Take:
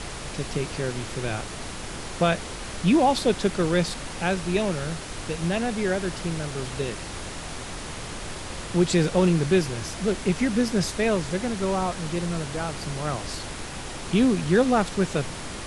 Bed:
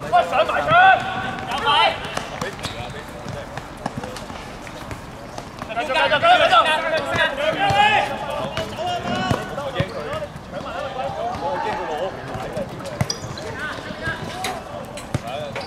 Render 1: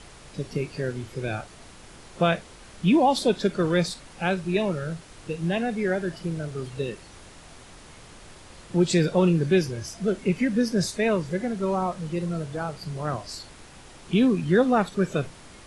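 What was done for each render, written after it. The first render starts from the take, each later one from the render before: noise print and reduce 12 dB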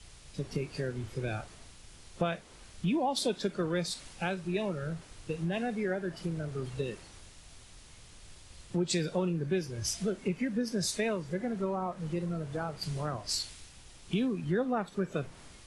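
compressor 4:1, threshold -30 dBFS, peak gain reduction 13 dB; three-band expander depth 70%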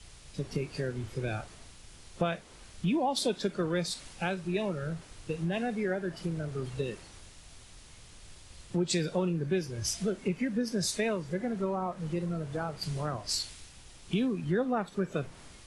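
gain +1 dB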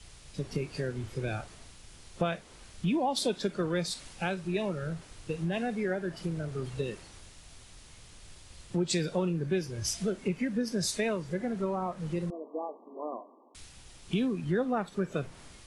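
12.3–13.55 brick-wall FIR band-pass 220–1200 Hz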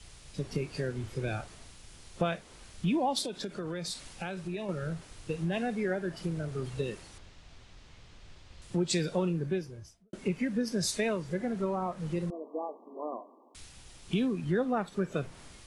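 3.21–4.69 compressor, threshold -32 dBFS; 7.18–8.62 air absorption 130 m; 9.28–10.13 studio fade out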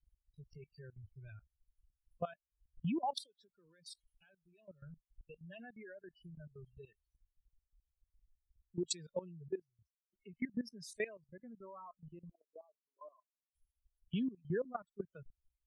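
per-bin expansion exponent 3; level quantiser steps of 17 dB

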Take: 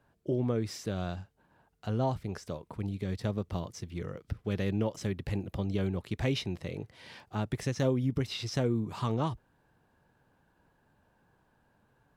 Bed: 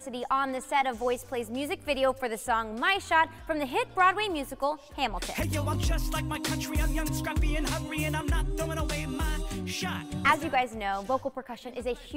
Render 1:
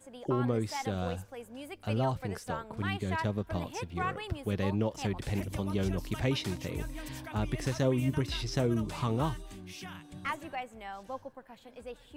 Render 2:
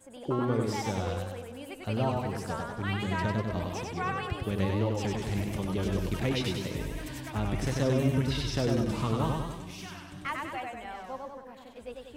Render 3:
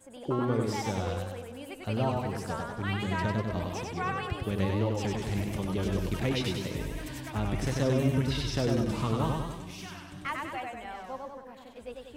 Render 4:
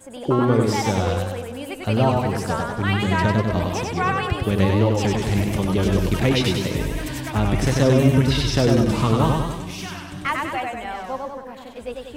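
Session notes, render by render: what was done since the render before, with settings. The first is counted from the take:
add bed -12 dB
warbling echo 97 ms, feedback 56%, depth 100 cents, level -3 dB
nothing audible
gain +10.5 dB

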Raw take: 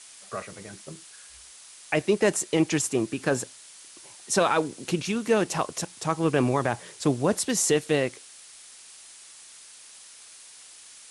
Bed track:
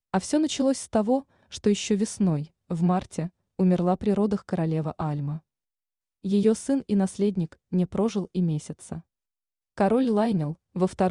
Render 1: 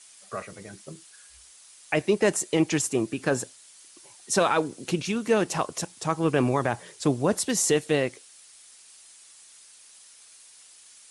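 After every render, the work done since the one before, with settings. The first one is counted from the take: denoiser 6 dB, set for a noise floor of -49 dBFS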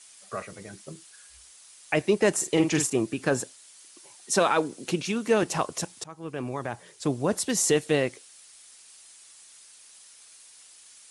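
2.33–2.9 doubler 46 ms -7 dB; 3.4–5.43 HPF 150 Hz; 6.04–7.66 fade in, from -20.5 dB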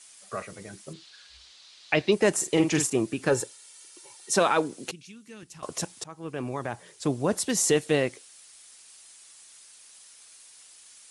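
0.93–2.12 synth low-pass 4100 Hz, resonance Q 2.9; 3.29–4.31 comb 2.2 ms, depth 61%; 4.91–5.63 passive tone stack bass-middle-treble 6-0-2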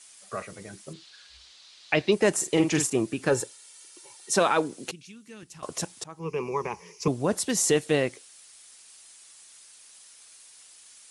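6.19–7.08 ripple EQ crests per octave 0.8, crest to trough 17 dB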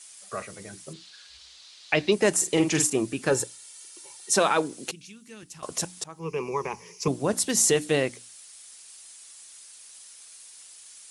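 high shelf 4300 Hz +5 dB; notches 60/120/180/240/300 Hz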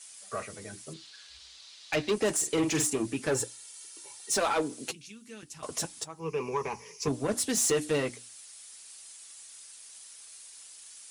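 soft clip -21 dBFS, distortion -11 dB; notch comb 180 Hz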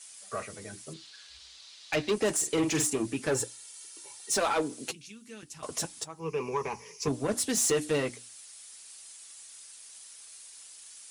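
nothing audible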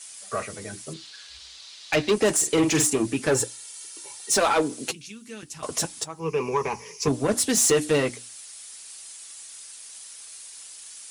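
gain +6.5 dB

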